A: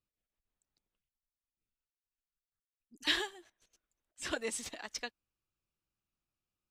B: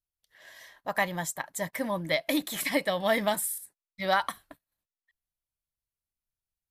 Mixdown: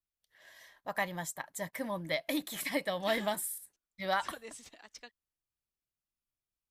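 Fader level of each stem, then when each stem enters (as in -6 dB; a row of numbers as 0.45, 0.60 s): -10.0, -6.0 dB; 0.00, 0.00 s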